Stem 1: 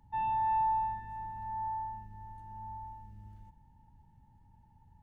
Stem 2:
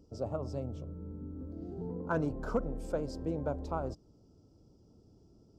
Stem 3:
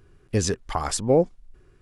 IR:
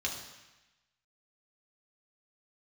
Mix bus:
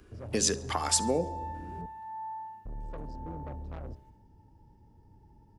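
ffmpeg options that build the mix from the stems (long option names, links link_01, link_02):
-filter_complex "[0:a]highpass=260,adelay=600,volume=0dB,asplit=2[link_01][link_02];[link_02]volume=-6.5dB[link_03];[1:a]aemphasis=mode=reproduction:type=bsi,asoftclip=type=tanh:threshold=-31dB,volume=-5.5dB,asplit=3[link_04][link_05][link_06];[link_04]atrim=end=1.86,asetpts=PTS-STARTPTS,afade=type=out:start_time=1.856:duration=0.004:curve=hsin[link_07];[link_05]atrim=start=1.86:end=2.65,asetpts=PTS-STARTPTS,volume=0[link_08];[link_06]atrim=start=2.65,asetpts=PTS-STARTPTS,afade=type=in:duration=0.004:curve=hsin[link_09];[link_07][link_08][link_09]concat=n=3:v=0:a=1[link_10];[2:a]highpass=frequency=210:width=0.5412,highpass=frequency=210:width=1.3066,volume=2dB,asplit=3[link_11][link_12][link_13];[link_12]volume=-22.5dB[link_14];[link_13]volume=-22.5dB[link_15];[3:a]atrim=start_sample=2205[link_16];[link_14][link_16]afir=irnorm=-1:irlink=0[link_17];[link_03][link_15]amix=inputs=2:normalize=0,aecho=0:1:70|140|210|280|350|420|490:1|0.47|0.221|0.104|0.0488|0.0229|0.0108[link_18];[link_01][link_10][link_11][link_17][link_18]amix=inputs=5:normalize=0,bandreject=frequency=68.21:width_type=h:width=4,bandreject=frequency=136.42:width_type=h:width=4,bandreject=frequency=204.63:width_type=h:width=4,bandreject=frequency=272.84:width_type=h:width=4,bandreject=frequency=341.05:width_type=h:width=4,bandreject=frequency=409.26:width_type=h:width=4,bandreject=frequency=477.47:width_type=h:width=4,bandreject=frequency=545.68:width_type=h:width=4,bandreject=frequency=613.89:width_type=h:width=4,bandreject=frequency=682.1:width_type=h:width=4,bandreject=frequency=750.31:width_type=h:width=4,bandreject=frequency=818.52:width_type=h:width=4,bandreject=frequency=886.73:width_type=h:width=4,bandreject=frequency=954.94:width_type=h:width=4,bandreject=frequency=1023.15:width_type=h:width=4,acrossover=split=150|3000[link_19][link_20][link_21];[link_20]acompressor=threshold=-30dB:ratio=3[link_22];[link_19][link_22][link_21]amix=inputs=3:normalize=0"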